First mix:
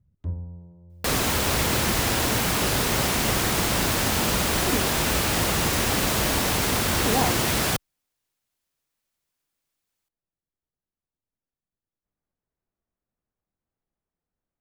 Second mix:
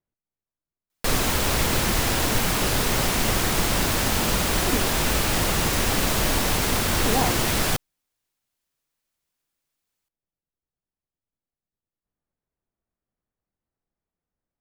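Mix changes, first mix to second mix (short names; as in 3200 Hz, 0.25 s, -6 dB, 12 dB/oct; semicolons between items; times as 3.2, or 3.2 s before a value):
first sound: muted; second sound: remove HPF 51 Hz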